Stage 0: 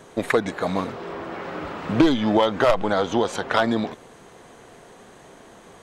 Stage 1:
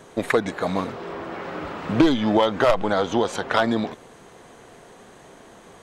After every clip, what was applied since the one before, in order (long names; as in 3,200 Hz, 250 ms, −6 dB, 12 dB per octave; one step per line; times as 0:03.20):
no processing that can be heard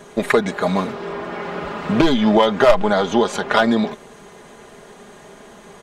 comb filter 4.9 ms, depth 56%
level +3.5 dB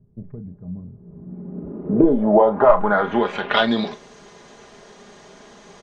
ambience of single reflections 34 ms −11 dB, 45 ms −18 dB
low-pass filter sweep 110 Hz → 5,500 Hz, 0:00.96–0:03.97
level −4 dB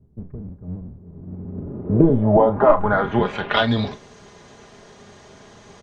sub-octave generator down 1 octave, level −1 dB
level −1 dB